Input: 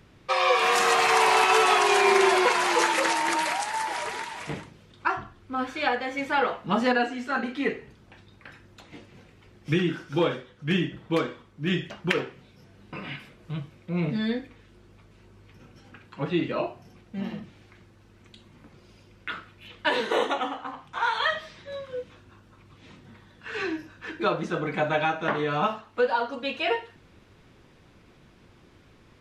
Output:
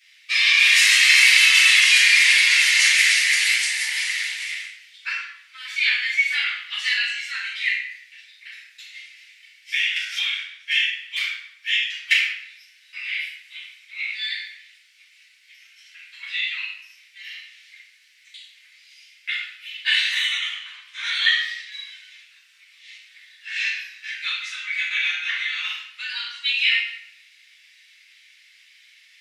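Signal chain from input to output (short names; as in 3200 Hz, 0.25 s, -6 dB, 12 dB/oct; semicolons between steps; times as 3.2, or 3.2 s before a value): elliptic high-pass 2000 Hz, stop band 70 dB; shoebox room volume 210 m³, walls mixed, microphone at 5.5 m; 9.96–10.38 three-band squash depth 100%; gain -1 dB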